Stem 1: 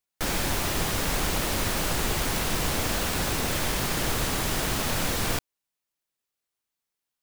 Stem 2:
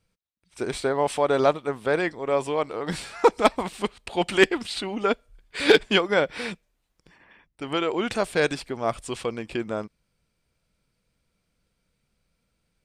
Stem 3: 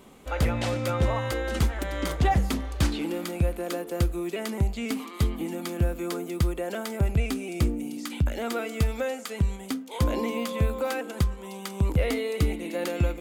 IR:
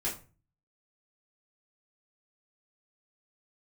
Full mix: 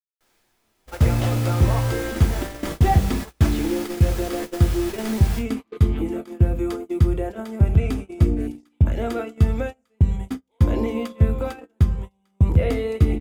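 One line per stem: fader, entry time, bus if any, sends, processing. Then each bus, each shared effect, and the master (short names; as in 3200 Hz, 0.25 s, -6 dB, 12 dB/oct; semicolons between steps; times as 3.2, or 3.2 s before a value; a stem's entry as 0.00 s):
-6.5 dB, 0.00 s, send -7 dB, low shelf 260 Hz -10.5 dB; auto duck -8 dB, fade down 0.25 s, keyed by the second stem
-16.5 dB, 0.00 s, no send, chord vocoder bare fifth, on D3
-1.0 dB, 0.60 s, send -9 dB, tilt -2 dB/oct; notch 4300 Hz, Q 17; de-hum 202.9 Hz, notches 40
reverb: on, RT60 0.35 s, pre-delay 3 ms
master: gate -26 dBFS, range -33 dB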